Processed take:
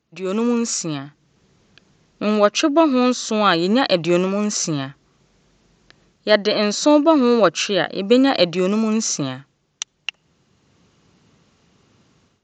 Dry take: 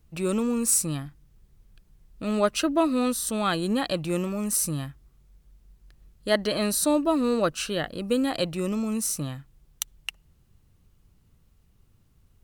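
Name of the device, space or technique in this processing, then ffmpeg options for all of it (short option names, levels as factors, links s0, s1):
Bluetooth headset: -af "highpass=220,dynaudnorm=f=240:g=3:m=5.62,aresample=16000,aresample=44100" -ar 16000 -c:a sbc -b:a 64k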